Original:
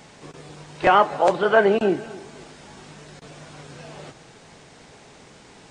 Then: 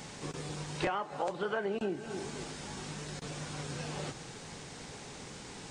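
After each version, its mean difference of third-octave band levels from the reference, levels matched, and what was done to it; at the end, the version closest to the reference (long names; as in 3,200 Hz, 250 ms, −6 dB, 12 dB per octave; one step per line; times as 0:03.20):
12.0 dB: bass and treble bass +3 dB, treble +5 dB
notch filter 650 Hz, Q 12
downward compressor 16 to 1, threshold −30 dBFS, peak gain reduction 20 dB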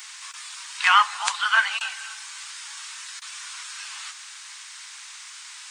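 17.0 dB: dynamic equaliser 1,500 Hz, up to −3 dB, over −30 dBFS, Q 0.76
Butterworth high-pass 1,000 Hz 48 dB per octave
spectral tilt +3.5 dB per octave
level +4.5 dB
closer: first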